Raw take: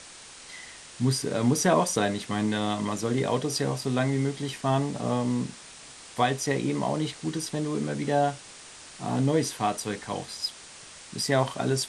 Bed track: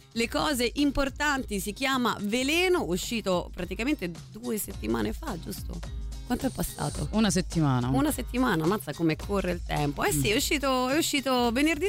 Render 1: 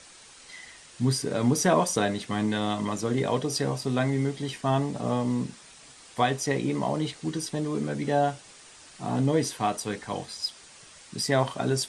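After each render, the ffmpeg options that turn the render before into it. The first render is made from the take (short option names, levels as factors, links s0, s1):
-af "afftdn=nr=6:nf=-47"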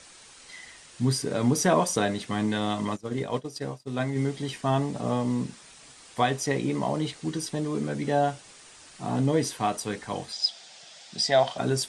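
-filter_complex "[0:a]asplit=3[s0][s1][s2];[s0]afade=t=out:st=2.95:d=0.02[s3];[s1]agate=range=0.0224:threshold=0.0794:ratio=3:release=100:detection=peak,afade=t=in:st=2.95:d=0.02,afade=t=out:st=4.15:d=0.02[s4];[s2]afade=t=in:st=4.15:d=0.02[s5];[s3][s4][s5]amix=inputs=3:normalize=0,asettb=1/sr,asplit=3[s6][s7][s8];[s6]atrim=end=10.324[s9];[s7]atrim=start=10.32:end=11.58,asetpts=PTS-STARTPTS,afade=t=in:d=0.004:c=qsin,afade=t=out:st=1.256:d=0.004:c=qsin,highpass=200,equalizer=f=280:t=q:w=4:g=-8,equalizer=f=410:t=q:w=4:g=-6,equalizer=f=710:t=q:w=4:g=10,equalizer=f=1100:t=q:w=4:g=-7,equalizer=f=3500:t=q:w=4:g=7,equalizer=f=5000:t=q:w=4:g=5,lowpass=f=8000:w=0.5412,lowpass=f=8000:w=1.3066[s10];[s8]atrim=start=11.576[s11];[s9][s10]acrossfade=d=0.004:c1=hsin:c2=qsin[s12];[s12][s11]acrossfade=d=0.004:c1=qsin:c2=hsin"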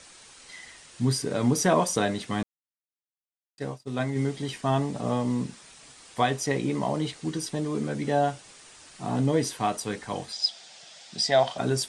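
-filter_complex "[0:a]asplit=3[s0][s1][s2];[s0]atrim=end=2.43,asetpts=PTS-STARTPTS,afade=t=out:st=2.426:d=0.004:c=hsin[s3];[s1]atrim=start=2.43:end=3.58,asetpts=PTS-STARTPTS,volume=0[s4];[s2]atrim=start=3.58,asetpts=PTS-STARTPTS,afade=t=in:d=0.004:c=hsin[s5];[s3][s4][s5]concat=n=3:v=0:a=1"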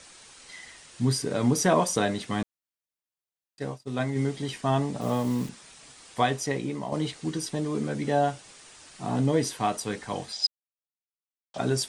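-filter_complex "[0:a]asettb=1/sr,asplit=3[s0][s1][s2];[s0]atrim=end=5.014[s3];[s1]atrim=start=5.01:end=5.49,asetpts=PTS-STARTPTS,afade=t=in:d=0.004:c=qsin,afade=t=out:st=0.476:d=0.004:c=qsin,acrusher=bits=8:dc=4:mix=0:aa=0.000001[s4];[s2]atrim=start=5.486[s5];[s3][s4]acrossfade=d=0.004:c1=hsin:c2=qsin[s6];[s6][s5]acrossfade=d=0.004:c1=qsin:c2=hsin,asplit=4[s7][s8][s9][s10];[s7]atrim=end=6.92,asetpts=PTS-STARTPTS,afade=t=out:st=6.27:d=0.65:silence=0.421697[s11];[s8]atrim=start=6.92:end=10.47,asetpts=PTS-STARTPTS,afade=t=in:d=0.004:c=hsin:silence=0.421697,afade=t=out:st=3.546:d=0.004:c=hsin[s12];[s9]atrim=start=10.47:end=11.54,asetpts=PTS-STARTPTS,volume=0[s13];[s10]atrim=start=11.54,asetpts=PTS-STARTPTS,afade=t=in:d=0.004:c=hsin[s14];[s11][s12][s13][s14]concat=n=4:v=0:a=1"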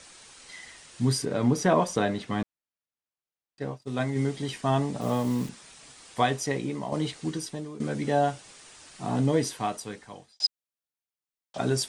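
-filter_complex "[0:a]asettb=1/sr,asplit=3[s0][s1][s2];[s0]atrim=end=1.254[s3];[s1]atrim=start=1.25:end=3.82,asetpts=PTS-STARTPTS,afade=t=in:d=0.004:c=qsin,afade=t=out:st=2.566:d=0.004:c=qsin,lowpass=f=3000:p=1[s4];[s2]atrim=start=3.816[s5];[s3][s4]acrossfade=d=0.004:c1=hsin:c2=qsin[s6];[s6][s5]acrossfade=d=0.004:c1=qsin:c2=hsin,asplit=3[s7][s8][s9];[s7]atrim=end=7.8,asetpts=PTS-STARTPTS,afade=t=out:st=7.26:d=0.54:silence=0.177828[s10];[s8]atrim=start=7.8:end=10.4,asetpts=PTS-STARTPTS,afade=t=in:d=0.004:c=hsin:silence=0.177828,afade=t=out:st=1.55:d=1.05[s11];[s9]atrim=start=10.4,asetpts=PTS-STARTPTS,afade=t=in:d=0.004:c=hsin[s12];[s10][s11][s12]concat=n=3:v=0:a=1"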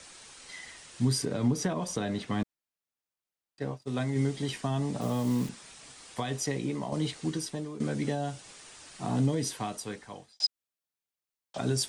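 -filter_complex "[0:a]alimiter=limit=0.158:level=0:latency=1:release=117,acrossover=split=290|3000[s0][s1][s2];[s1]acompressor=threshold=0.0224:ratio=6[s3];[s0][s3][s2]amix=inputs=3:normalize=0"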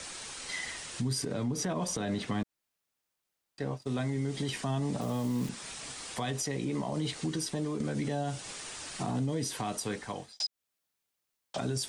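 -filter_complex "[0:a]asplit=2[s0][s1];[s1]acompressor=threshold=0.0126:ratio=6,volume=1.41[s2];[s0][s2]amix=inputs=2:normalize=0,alimiter=limit=0.0631:level=0:latency=1:release=83"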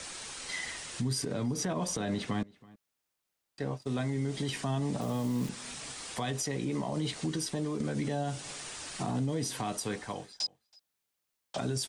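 -filter_complex "[0:a]asplit=2[s0][s1];[s1]adelay=326.5,volume=0.0708,highshelf=f=4000:g=-7.35[s2];[s0][s2]amix=inputs=2:normalize=0"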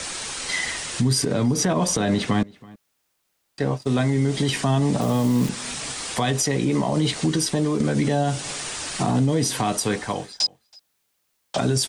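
-af "volume=3.76"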